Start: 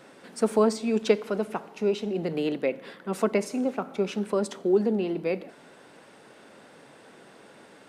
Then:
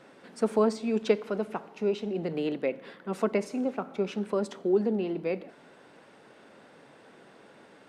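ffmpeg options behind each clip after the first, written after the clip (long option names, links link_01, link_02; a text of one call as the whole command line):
ffmpeg -i in.wav -af "highshelf=frequency=6800:gain=-10,volume=-2.5dB" out.wav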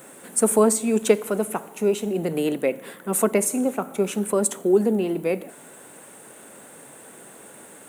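ffmpeg -i in.wav -af "aexciter=amount=14.7:drive=7.5:freq=7500,volume=6.5dB" out.wav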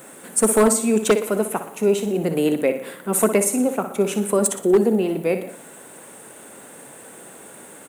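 ffmpeg -i in.wav -af "aecho=1:1:60|120|180|240|300:0.299|0.134|0.0605|0.0272|0.0122,aeval=exprs='0.316*(abs(mod(val(0)/0.316+3,4)-2)-1)':channel_layout=same,volume=2.5dB" out.wav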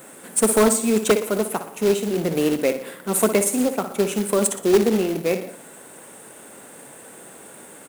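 ffmpeg -i in.wav -af "acrusher=bits=3:mode=log:mix=0:aa=0.000001,volume=-1dB" out.wav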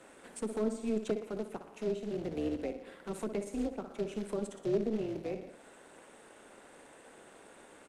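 ffmpeg -i in.wav -filter_complex "[0:a]highpass=230,lowpass=5300,acrossover=split=380[link_01][link_02];[link_02]acompressor=threshold=-37dB:ratio=3[link_03];[link_01][link_03]amix=inputs=2:normalize=0,tremolo=f=220:d=0.621,volume=-7dB" out.wav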